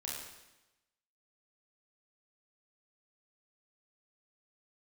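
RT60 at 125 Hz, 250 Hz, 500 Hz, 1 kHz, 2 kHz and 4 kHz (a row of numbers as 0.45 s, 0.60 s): 1.0 s, 1.0 s, 1.0 s, 1.0 s, 1.0 s, 0.95 s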